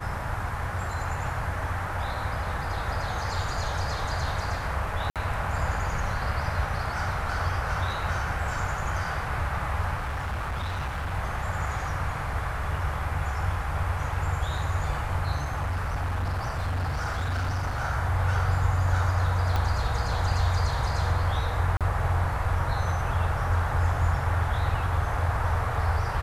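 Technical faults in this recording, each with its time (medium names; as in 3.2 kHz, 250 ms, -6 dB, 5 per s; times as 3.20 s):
5.10–5.16 s: dropout 57 ms
9.97–11.14 s: clipped -27 dBFS
15.35–17.82 s: clipped -24.5 dBFS
19.56 s: pop -14 dBFS
21.77–21.81 s: dropout 37 ms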